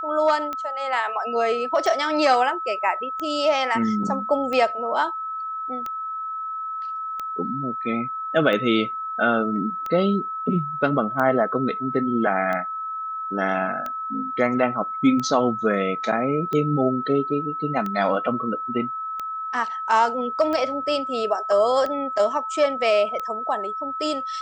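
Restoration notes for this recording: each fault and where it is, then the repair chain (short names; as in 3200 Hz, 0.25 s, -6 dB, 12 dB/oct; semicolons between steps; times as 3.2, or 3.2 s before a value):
tick 45 rpm -16 dBFS
tone 1300 Hz -27 dBFS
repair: de-click; notch 1300 Hz, Q 30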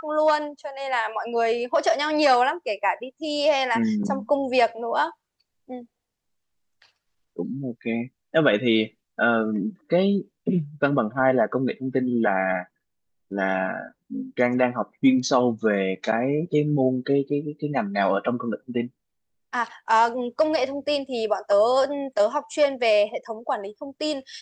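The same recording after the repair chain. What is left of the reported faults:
none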